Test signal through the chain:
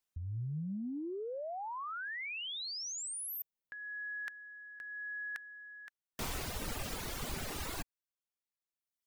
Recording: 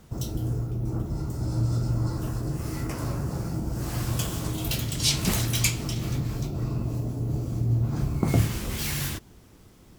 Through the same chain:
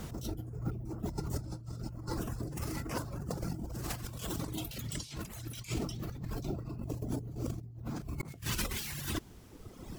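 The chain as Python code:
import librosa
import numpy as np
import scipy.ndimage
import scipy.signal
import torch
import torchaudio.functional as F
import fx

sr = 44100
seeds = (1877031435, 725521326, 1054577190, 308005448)

y = fx.dereverb_blind(x, sr, rt60_s=1.4)
y = fx.over_compress(y, sr, threshold_db=-41.0, ratio=-1.0)
y = y * 10.0 ** (1.0 / 20.0)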